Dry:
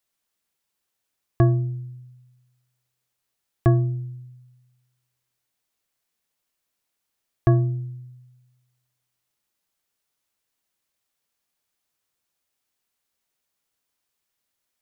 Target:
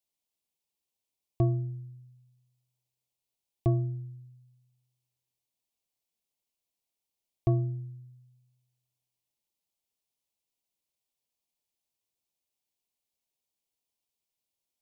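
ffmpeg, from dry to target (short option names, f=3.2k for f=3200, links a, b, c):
-af "asuperstop=centerf=1500:order=4:qfactor=1.2,volume=-8dB"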